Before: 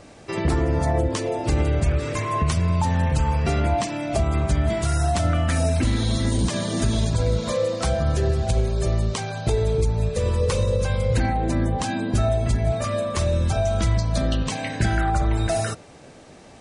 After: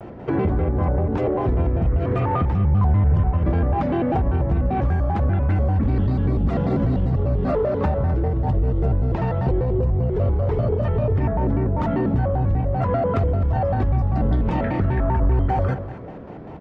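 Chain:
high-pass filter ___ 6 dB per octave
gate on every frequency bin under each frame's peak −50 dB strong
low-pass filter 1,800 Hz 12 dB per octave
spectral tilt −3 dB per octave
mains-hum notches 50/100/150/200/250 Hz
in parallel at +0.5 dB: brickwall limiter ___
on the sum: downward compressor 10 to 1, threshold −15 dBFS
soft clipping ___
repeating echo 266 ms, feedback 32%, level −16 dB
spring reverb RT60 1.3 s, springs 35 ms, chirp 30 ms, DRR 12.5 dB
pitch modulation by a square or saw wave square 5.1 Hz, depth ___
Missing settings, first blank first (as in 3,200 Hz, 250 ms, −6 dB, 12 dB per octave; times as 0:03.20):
120 Hz, −16.5 dBFS, −12 dBFS, 250 cents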